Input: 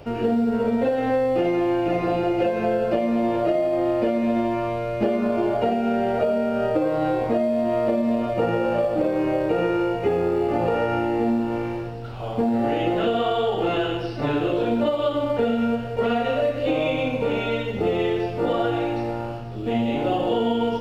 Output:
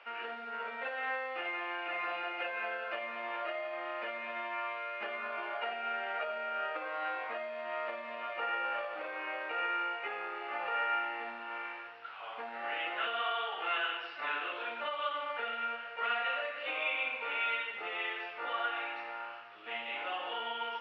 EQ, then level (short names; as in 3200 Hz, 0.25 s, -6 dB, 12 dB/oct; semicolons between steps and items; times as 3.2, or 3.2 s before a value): Butterworth band-pass 1800 Hz, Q 1.1; 0.0 dB